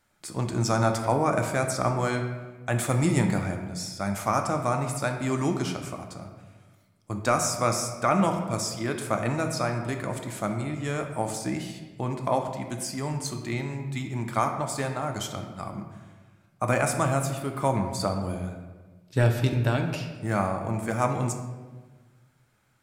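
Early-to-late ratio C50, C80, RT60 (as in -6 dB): 6.5 dB, 8.0 dB, 1.3 s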